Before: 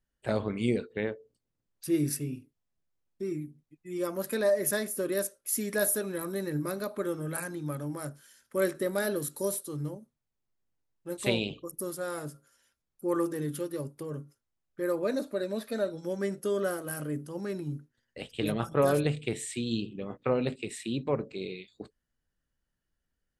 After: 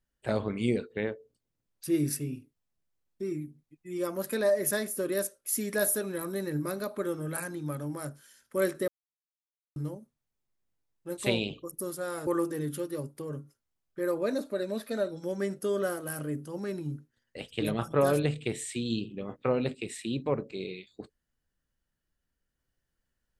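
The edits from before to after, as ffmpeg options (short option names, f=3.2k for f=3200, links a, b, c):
-filter_complex "[0:a]asplit=4[a][b][c][d];[a]atrim=end=8.88,asetpts=PTS-STARTPTS,afade=t=out:st=8.876:d=0.004:c=hsin[e];[b]atrim=start=8.88:end=9.76,asetpts=PTS-STARTPTS,volume=0[f];[c]atrim=start=9.76:end=12.272,asetpts=PTS-STARTPTS,afade=t=in:d=0.004:c=hsin[g];[d]atrim=start=13.078[h];[e][f][g]concat=n=3:v=0:a=1[i];[i][h]acrossfade=d=0.004:c1=hsin:c2=hsin"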